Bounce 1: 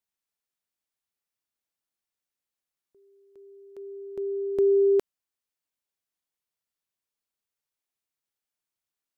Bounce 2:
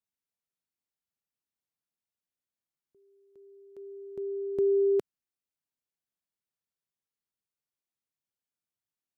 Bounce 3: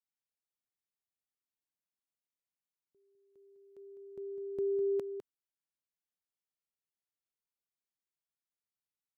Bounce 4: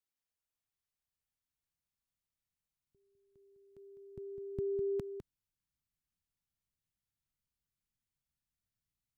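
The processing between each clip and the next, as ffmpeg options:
ffmpeg -i in.wav -af "equalizer=frequency=150:width=0.55:gain=8.5,volume=-7.5dB" out.wav
ffmpeg -i in.wav -af "aecho=1:1:204:0.376,volume=-8dB" out.wav
ffmpeg -i in.wav -af "asubboost=boost=12:cutoff=140" out.wav

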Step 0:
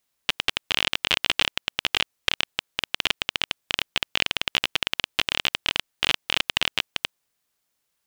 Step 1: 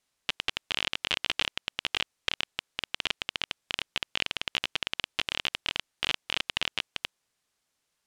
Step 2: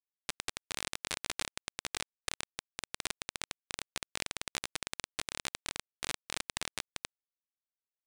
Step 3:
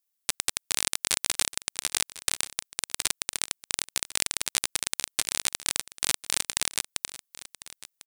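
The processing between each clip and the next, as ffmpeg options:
ffmpeg -i in.wav -af "lowpass=9600,alimiter=limit=-9.5dB:level=0:latency=1:release=16" out.wav
ffmpeg -i in.wav -af "aeval=exprs='0.355*(cos(1*acos(clip(val(0)/0.355,-1,1)))-cos(1*PI/2))+0.158*(cos(3*acos(clip(val(0)/0.355,-1,1)))-cos(3*PI/2))+0.00398*(cos(6*acos(clip(val(0)/0.355,-1,1)))-cos(6*PI/2))':channel_layout=same,aeval=exprs='sgn(val(0))*max(abs(val(0))-0.00422,0)':channel_layout=same,volume=-5dB" out.wav
ffmpeg -i in.wav -af "crystalizer=i=2.5:c=0,aecho=1:1:1049:0.141,volume=4dB" out.wav

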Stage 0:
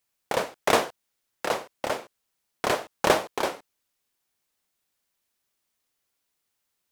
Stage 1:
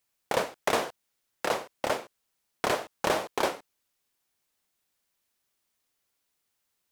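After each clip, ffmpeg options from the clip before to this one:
ffmpeg -i in.wav -af "alimiter=limit=-12.5dB:level=0:latency=1:release=131" out.wav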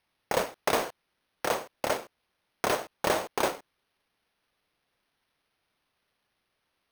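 ffmpeg -i in.wav -af "acrusher=samples=6:mix=1:aa=0.000001" out.wav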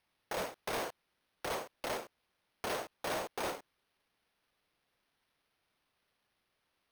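ffmpeg -i in.wav -af "volume=31dB,asoftclip=hard,volume=-31dB,volume=-2.5dB" out.wav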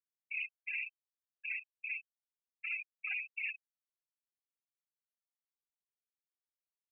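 ffmpeg -i in.wav -af "aeval=exprs='val(0)*gte(abs(val(0)),0.00266)':channel_layout=same,afftfilt=real='re*gte(hypot(re,im),0.0447)':imag='im*gte(hypot(re,im),0.0447)':win_size=1024:overlap=0.75,lowpass=frequency=2600:width_type=q:width=0.5098,lowpass=frequency=2600:width_type=q:width=0.6013,lowpass=frequency=2600:width_type=q:width=0.9,lowpass=frequency=2600:width_type=q:width=2.563,afreqshift=-3100,volume=1dB" out.wav

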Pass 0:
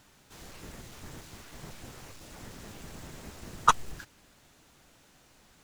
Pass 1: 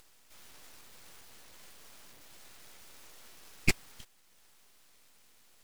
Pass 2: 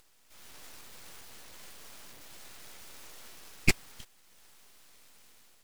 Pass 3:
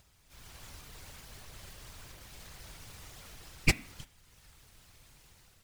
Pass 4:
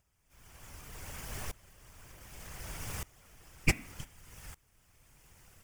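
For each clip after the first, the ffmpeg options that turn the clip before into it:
ffmpeg -i in.wav -af "highpass=frequency=1300:poles=1,acompressor=mode=upward:threshold=-55dB:ratio=2.5,aeval=exprs='abs(val(0))':channel_layout=same" out.wav
ffmpeg -i in.wav -af "dynaudnorm=framelen=160:gausssize=5:maxgain=7.5dB,volume=-3dB" out.wav
ffmpeg -i in.wav -af "highshelf=frequency=9200:gain=-4,bandreject=frequency=224.7:width_type=h:width=4,bandreject=frequency=449.4:width_type=h:width=4,bandreject=frequency=674.1:width_type=h:width=4,bandreject=frequency=898.8:width_type=h:width=4,bandreject=frequency=1123.5:width_type=h:width=4,bandreject=frequency=1348.2:width_type=h:width=4,bandreject=frequency=1572.9:width_type=h:width=4,bandreject=frequency=1797.6:width_type=h:width=4,bandreject=frequency=2022.3:width_type=h:width=4,bandreject=frequency=2247:width_type=h:width=4,bandreject=frequency=2471.7:width_type=h:width=4,bandreject=frequency=2696.4:width_type=h:width=4,bandreject=frequency=2921.1:width_type=h:width=4,bandreject=frequency=3145.8:width_type=h:width=4,bandreject=frequency=3370.5:width_type=h:width=4,bandreject=frequency=3595.2:width_type=h:width=4,bandreject=frequency=3819.9:width_type=h:width=4,bandreject=frequency=4044.6:width_type=h:width=4,afftfilt=real='hypot(re,im)*cos(2*PI*random(0))':imag='hypot(re,im)*sin(2*PI*random(1))':win_size=512:overlap=0.75,volume=6.5dB" out.wav
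ffmpeg -i in.wav -af "equalizer=frequency=4000:width_type=o:width=0.44:gain=-12,aeval=exprs='val(0)*pow(10,-24*if(lt(mod(-0.66*n/s,1),2*abs(-0.66)/1000),1-mod(-0.66*n/s,1)/(2*abs(-0.66)/1000),(mod(-0.66*n/s,1)-2*abs(-0.66)/1000)/(1-2*abs(-0.66)/1000))/20)':channel_layout=same,volume=12.5dB" out.wav

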